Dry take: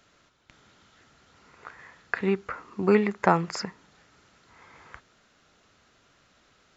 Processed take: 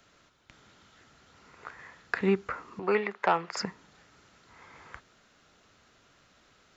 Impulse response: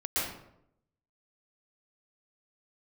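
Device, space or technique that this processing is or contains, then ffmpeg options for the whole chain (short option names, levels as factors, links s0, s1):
one-band saturation: -filter_complex "[0:a]acrossover=split=440|2800[s0][s1][s2];[s1]asoftclip=type=tanh:threshold=0.168[s3];[s0][s3][s2]amix=inputs=3:normalize=0,asettb=1/sr,asplit=3[s4][s5][s6];[s4]atrim=end=2.794[s7];[s5]atrim=start=2.79:end=3.57,asetpts=PTS-STARTPTS,afade=t=in:d=0.004:c=qsin,afade=t=out:st=0.776:d=0.004:c=qsin,acrossover=split=430 4500:gain=0.158 1 0.141[s8][s9][s10];[s8][s9][s10]amix=inputs=3:normalize=0[s11];[s6]atrim=start=3.566[s12];[s7][s11]acrossfade=d=0.004:c1=hsin:c2=qsin[s13];[s13][s12]acrossfade=d=0.004:c1=qsin:c2=hsin"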